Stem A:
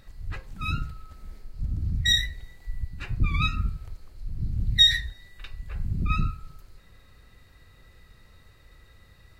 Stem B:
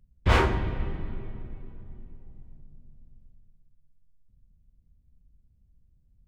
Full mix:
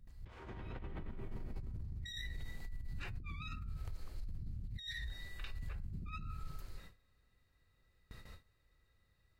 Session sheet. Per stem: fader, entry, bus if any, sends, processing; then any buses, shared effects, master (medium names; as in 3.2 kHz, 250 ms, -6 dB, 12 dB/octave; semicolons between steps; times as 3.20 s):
1.04 s -17.5 dB -> 1.71 s -5 dB, 0.00 s, no send, gate with hold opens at -41 dBFS; compression 2:1, threshold -31 dBFS, peak gain reduction 10 dB
-5.0 dB, 0.00 s, no send, none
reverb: none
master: compressor with a negative ratio -42 dBFS, ratio -1; peak limiter -35 dBFS, peak gain reduction 7.5 dB